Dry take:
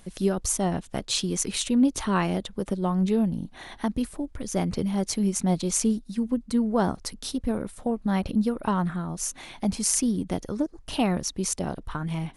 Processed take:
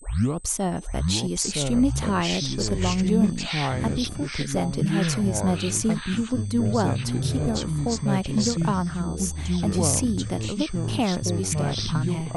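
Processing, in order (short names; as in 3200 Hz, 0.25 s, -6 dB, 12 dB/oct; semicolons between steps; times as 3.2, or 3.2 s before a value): tape start at the beginning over 0.40 s; whine 8200 Hz -49 dBFS; echoes that change speed 0.766 s, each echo -5 st, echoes 3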